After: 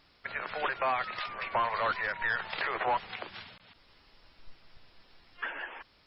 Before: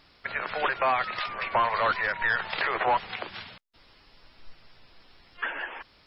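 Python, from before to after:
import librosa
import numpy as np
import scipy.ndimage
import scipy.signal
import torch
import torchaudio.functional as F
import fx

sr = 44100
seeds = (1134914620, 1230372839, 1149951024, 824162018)

y = fx.reverse_delay(x, sr, ms=148, wet_db=-6.0, at=(3.44, 5.49))
y = F.gain(torch.from_numpy(y), -5.0).numpy()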